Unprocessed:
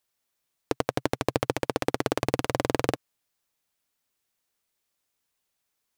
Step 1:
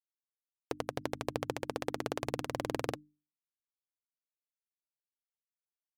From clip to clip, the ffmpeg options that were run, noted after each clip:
ffmpeg -i in.wav -af "afftfilt=real='re*gte(hypot(re,im),0.00282)':imag='im*gte(hypot(re,im),0.00282)':win_size=1024:overlap=0.75,bandreject=frequency=50:width_type=h:width=6,bandreject=frequency=100:width_type=h:width=6,bandreject=frequency=150:width_type=h:width=6,bandreject=frequency=200:width_type=h:width=6,bandreject=frequency=250:width_type=h:width=6,bandreject=frequency=300:width_type=h:width=6,volume=-9dB" out.wav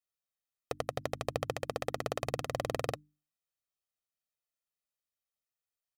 ffmpeg -i in.wav -af "aecho=1:1:1.6:0.6" out.wav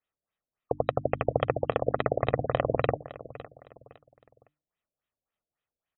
ffmpeg -i in.wav -af "aecho=1:1:510|1020|1530:0.15|0.0509|0.0173,afftfilt=real='re*lt(b*sr/1024,670*pow(4000/670,0.5+0.5*sin(2*PI*3.6*pts/sr)))':imag='im*lt(b*sr/1024,670*pow(4000/670,0.5+0.5*sin(2*PI*3.6*pts/sr)))':win_size=1024:overlap=0.75,volume=9dB" out.wav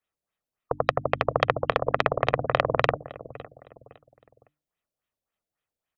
ffmpeg -i in.wav -filter_complex "[0:a]aeval=exprs='0.447*(cos(1*acos(clip(val(0)/0.447,-1,1)))-cos(1*PI/2))+0.2*(cos(2*acos(clip(val(0)/0.447,-1,1)))-cos(2*PI/2))+0.0501*(cos(3*acos(clip(val(0)/0.447,-1,1)))-cos(3*PI/2))+0.01*(cos(5*acos(clip(val(0)/0.447,-1,1)))-cos(5*PI/2))':channel_layout=same,acrossover=split=380[link_01][link_02];[link_01]asoftclip=type=tanh:threshold=-30.5dB[link_03];[link_03][link_02]amix=inputs=2:normalize=0,volume=4dB" out.wav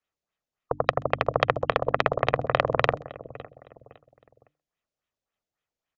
ffmpeg -i in.wav -filter_complex "[0:a]asplit=2[link_01][link_02];[link_02]adelay=130,highpass=300,lowpass=3400,asoftclip=type=hard:threshold=-10.5dB,volume=-26dB[link_03];[link_01][link_03]amix=inputs=2:normalize=0,aresample=16000,aresample=44100" out.wav

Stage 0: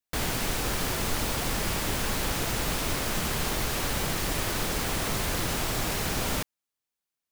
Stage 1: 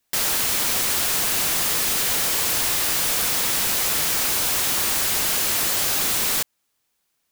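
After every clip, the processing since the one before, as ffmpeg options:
ffmpeg -i in.wav -filter_complex "[0:a]asplit=2[link_01][link_02];[link_02]alimiter=limit=-22.5dB:level=0:latency=1:release=308,volume=1dB[link_03];[link_01][link_03]amix=inputs=2:normalize=0,aeval=exprs='(mod(20*val(0)+1,2)-1)/20':channel_layout=same,volume=9dB" out.wav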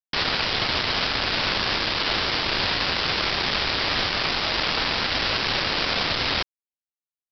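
ffmpeg -i in.wav -af "afreqshift=-120,aresample=11025,acrusher=bits=3:mix=0:aa=0.5,aresample=44100,volume=5dB" out.wav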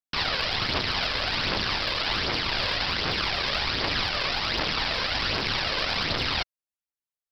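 ffmpeg -i in.wav -af "aphaser=in_gain=1:out_gain=1:delay=2:decay=0.45:speed=1.3:type=triangular,volume=-4dB" out.wav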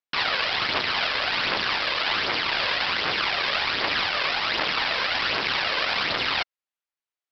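ffmpeg -i in.wav -af "lowpass=2400,aemphasis=mode=production:type=riaa,volume=3.5dB" out.wav

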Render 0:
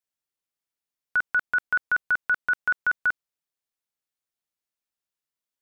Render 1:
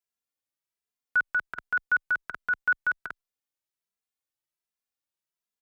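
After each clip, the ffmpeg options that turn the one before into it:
ffmpeg -i in.wav -filter_complex "[0:a]asplit=2[link_01][link_02];[link_02]adelay=2.6,afreqshift=1.3[link_03];[link_01][link_03]amix=inputs=2:normalize=1" out.wav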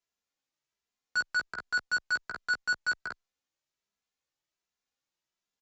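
ffmpeg -i in.wav -filter_complex "[0:a]aresample=16000,asoftclip=type=tanh:threshold=-31.5dB,aresample=44100,asplit=2[link_01][link_02];[link_02]adelay=15,volume=-4dB[link_03];[link_01][link_03]amix=inputs=2:normalize=0,volume=3dB" out.wav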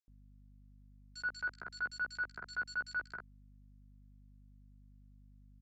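ffmpeg -i in.wav -filter_complex "[0:a]highshelf=frequency=4400:gain=-6.5,aeval=exprs='val(0)+0.00251*(sin(2*PI*50*n/s)+sin(2*PI*2*50*n/s)/2+sin(2*PI*3*50*n/s)/3+sin(2*PI*4*50*n/s)/4+sin(2*PI*5*50*n/s)/5)':channel_layout=same,acrossover=split=2900[link_01][link_02];[link_01]adelay=80[link_03];[link_03][link_02]amix=inputs=2:normalize=0,volume=-6.5dB" out.wav

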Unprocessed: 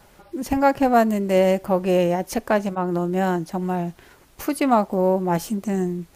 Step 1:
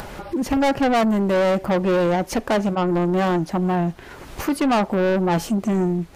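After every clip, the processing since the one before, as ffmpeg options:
ffmpeg -i in.wav -af "lowpass=frequency=3600:poles=1,acompressor=mode=upward:threshold=-32dB:ratio=2.5,asoftclip=type=tanh:threshold=-23dB,volume=7.5dB" out.wav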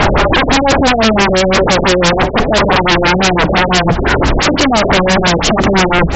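ffmpeg -i in.wav -af "aeval=exprs='0.178*sin(PI/2*7.94*val(0)/0.178)':channel_layout=same,aeval=exprs='val(0)+0.0224*(sin(2*PI*60*n/s)+sin(2*PI*2*60*n/s)/2+sin(2*PI*3*60*n/s)/3+sin(2*PI*4*60*n/s)/4+sin(2*PI*5*60*n/s)/5)':channel_layout=same,afftfilt=real='re*lt(b*sr/1024,640*pow(8000/640,0.5+0.5*sin(2*PI*5.9*pts/sr)))':imag='im*lt(b*sr/1024,640*pow(8000/640,0.5+0.5*sin(2*PI*5.9*pts/sr)))':win_size=1024:overlap=0.75,volume=9dB" out.wav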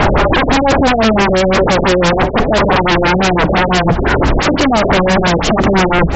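ffmpeg -i in.wav -af "equalizer=frequency=6400:width=0.39:gain=-6" out.wav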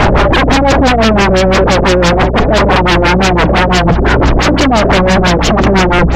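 ffmpeg -i in.wav -af "acontrast=69,aeval=exprs='val(0)+0.158*(sin(2*PI*60*n/s)+sin(2*PI*2*60*n/s)/2+sin(2*PI*3*60*n/s)/3+sin(2*PI*4*60*n/s)/4+sin(2*PI*5*60*n/s)/5)':channel_layout=same,volume=-2dB" out.wav

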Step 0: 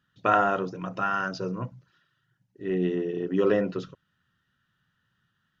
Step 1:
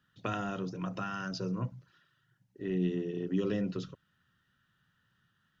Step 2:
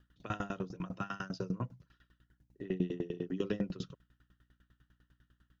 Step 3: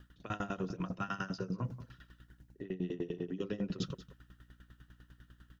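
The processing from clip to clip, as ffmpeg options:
ffmpeg -i in.wav -filter_complex "[0:a]acrossover=split=250|3000[link_01][link_02][link_03];[link_02]acompressor=threshold=-39dB:ratio=5[link_04];[link_01][link_04][link_03]amix=inputs=3:normalize=0" out.wav
ffmpeg -i in.wav -af "aeval=exprs='val(0)+0.000631*(sin(2*PI*60*n/s)+sin(2*PI*2*60*n/s)/2+sin(2*PI*3*60*n/s)/3+sin(2*PI*4*60*n/s)/4+sin(2*PI*5*60*n/s)/5)':channel_layout=same,aeval=exprs='val(0)*pow(10,-24*if(lt(mod(10*n/s,1),2*abs(10)/1000),1-mod(10*n/s,1)/(2*abs(10)/1000),(mod(10*n/s,1)-2*abs(10)/1000)/(1-2*abs(10)/1000))/20)':channel_layout=same,volume=4dB" out.wav
ffmpeg -i in.wav -af "areverse,acompressor=threshold=-43dB:ratio=10,areverse,aecho=1:1:183:0.168,volume=9.5dB" out.wav

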